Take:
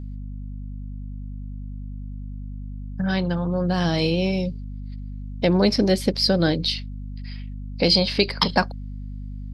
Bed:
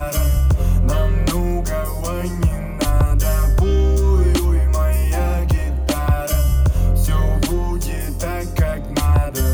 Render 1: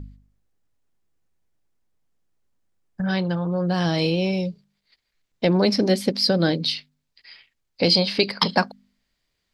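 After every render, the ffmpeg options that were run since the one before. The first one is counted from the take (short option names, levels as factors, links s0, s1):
-af "bandreject=f=50:t=h:w=4,bandreject=f=100:t=h:w=4,bandreject=f=150:t=h:w=4,bandreject=f=200:t=h:w=4,bandreject=f=250:t=h:w=4"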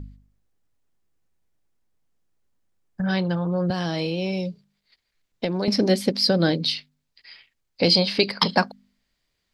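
-filter_complex "[0:a]asettb=1/sr,asplit=3[s0][s1][s2];[s0]atrim=end=3.704[s3];[s1]atrim=start=3.7:end=5.68,asetpts=PTS-STARTPTS,afade=t=in:d=0.004:c=qsin,afade=t=out:st=1.976:d=0.004:c=qsin,acrossover=split=150|2900[s4][s5][s6];[s4]acompressor=threshold=0.00891:ratio=4[s7];[s5]acompressor=threshold=0.0631:ratio=4[s8];[s6]acompressor=threshold=0.0141:ratio=4[s9];[s7][s8][s9]amix=inputs=3:normalize=0[s10];[s2]atrim=start=5.676[s11];[s3][s10]acrossfade=d=0.004:c1=hsin:c2=qsin[s12];[s12][s11]acrossfade=d=0.004:c1=qsin:c2=hsin"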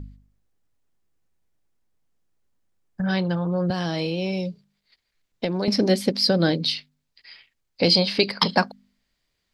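-af anull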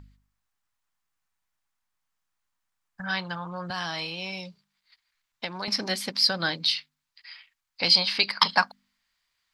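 -af "lowshelf=f=690:t=q:w=1.5:g=-13"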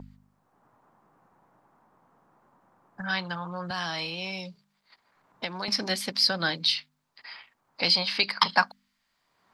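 -filter_complex "[0:a]acrossover=split=130|990|2600[s0][s1][s2][s3];[s1]acompressor=mode=upward:threshold=0.0141:ratio=2.5[s4];[s3]alimiter=limit=0.237:level=0:latency=1:release=311[s5];[s0][s4][s2][s5]amix=inputs=4:normalize=0"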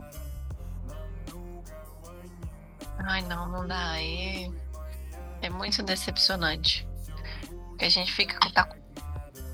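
-filter_complex "[1:a]volume=0.075[s0];[0:a][s0]amix=inputs=2:normalize=0"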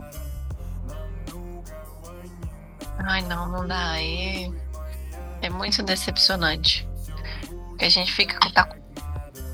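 -af "volume=1.78,alimiter=limit=0.891:level=0:latency=1"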